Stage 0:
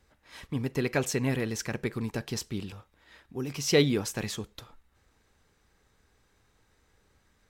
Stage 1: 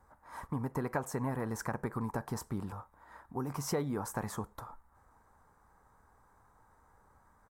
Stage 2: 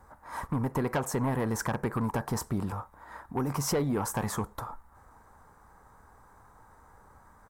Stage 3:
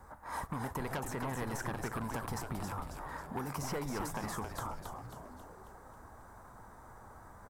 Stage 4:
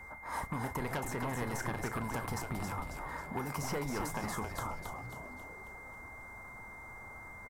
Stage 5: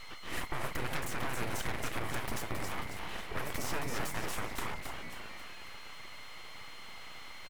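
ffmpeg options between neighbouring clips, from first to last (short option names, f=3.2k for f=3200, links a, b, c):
-af "firequalizer=gain_entry='entry(250,0);entry(370,-3);entry(930,13);entry(2700,-19);entry(9000,-1)':delay=0.05:min_phase=1,acompressor=threshold=-32dB:ratio=4"
-af "asoftclip=type=tanh:threshold=-30.5dB,volume=8.5dB"
-filter_complex "[0:a]acrossover=split=840|3000[a][b][c];[a]acompressor=threshold=-42dB:ratio=4[d];[b]acompressor=threshold=-44dB:ratio=4[e];[c]acompressor=threshold=-50dB:ratio=4[f];[d][e][f]amix=inputs=3:normalize=0,asplit=2[g][h];[h]asplit=7[i][j][k][l][m][n][o];[i]adelay=271,afreqshift=-130,volume=-5dB[p];[j]adelay=542,afreqshift=-260,volume=-10.7dB[q];[k]adelay=813,afreqshift=-390,volume=-16.4dB[r];[l]adelay=1084,afreqshift=-520,volume=-22dB[s];[m]adelay=1355,afreqshift=-650,volume=-27.7dB[t];[n]adelay=1626,afreqshift=-780,volume=-33.4dB[u];[o]adelay=1897,afreqshift=-910,volume=-39.1dB[v];[p][q][r][s][t][u][v]amix=inputs=7:normalize=0[w];[g][w]amix=inputs=2:normalize=0,volume=1.5dB"
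-filter_complex "[0:a]aeval=exprs='val(0)+0.00355*sin(2*PI*2100*n/s)':c=same,asplit=2[a][b];[b]adelay=33,volume=-14dB[c];[a][c]amix=inputs=2:normalize=0,volume=1dB"
-af "aeval=exprs='abs(val(0))':c=same,volume=3.5dB"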